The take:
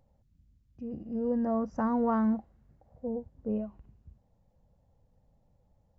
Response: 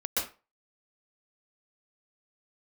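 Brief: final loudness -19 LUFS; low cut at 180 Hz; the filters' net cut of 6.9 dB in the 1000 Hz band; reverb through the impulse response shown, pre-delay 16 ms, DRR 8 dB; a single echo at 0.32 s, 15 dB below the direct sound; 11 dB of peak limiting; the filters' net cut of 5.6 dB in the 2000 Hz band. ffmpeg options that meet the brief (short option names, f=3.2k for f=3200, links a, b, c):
-filter_complex "[0:a]highpass=180,equalizer=f=1k:t=o:g=-8.5,equalizer=f=2k:t=o:g=-3.5,alimiter=level_in=8dB:limit=-24dB:level=0:latency=1,volume=-8dB,aecho=1:1:320:0.178,asplit=2[a][b];[1:a]atrim=start_sample=2205,adelay=16[c];[b][c]afir=irnorm=-1:irlink=0,volume=-15.5dB[d];[a][d]amix=inputs=2:normalize=0,volume=21dB"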